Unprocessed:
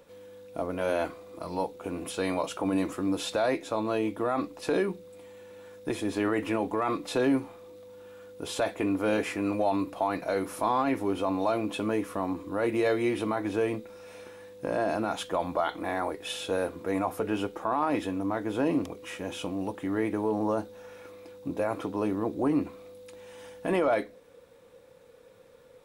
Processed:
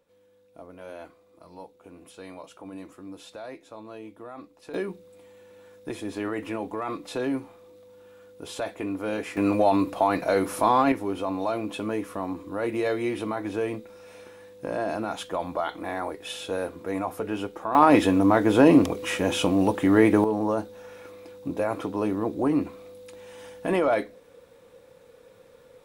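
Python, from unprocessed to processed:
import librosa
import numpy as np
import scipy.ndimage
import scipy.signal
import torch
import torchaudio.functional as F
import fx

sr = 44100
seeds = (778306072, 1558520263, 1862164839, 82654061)

y = fx.gain(x, sr, db=fx.steps((0.0, -13.0), (4.74, -3.0), (9.37, 6.0), (10.92, -0.5), (17.75, 11.0), (20.24, 2.5)))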